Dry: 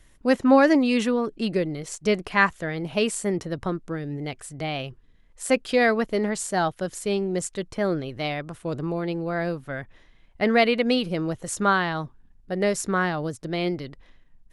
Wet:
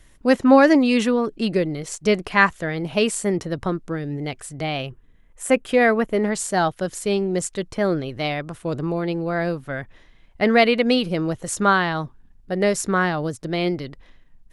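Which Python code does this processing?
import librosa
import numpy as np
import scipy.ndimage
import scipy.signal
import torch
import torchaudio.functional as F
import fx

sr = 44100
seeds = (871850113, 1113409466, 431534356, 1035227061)

y = fx.peak_eq(x, sr, hz=4600.0, db=-11.0, octaves=0.73, at=(4.86, 6.25))
y = F.gain(torch.from_numpy(y), 3.5).numpy()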